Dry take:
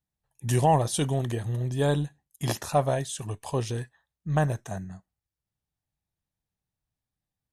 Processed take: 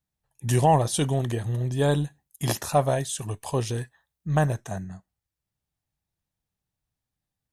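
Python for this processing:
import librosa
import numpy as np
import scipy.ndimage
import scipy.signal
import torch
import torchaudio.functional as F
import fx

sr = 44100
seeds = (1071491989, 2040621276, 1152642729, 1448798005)

y = fx.high_shelf(x, sr, hz=11000.0, db=7.5, at=(1.91, 4.48))
y = y * 10.0 ** (2.0 / 20.0)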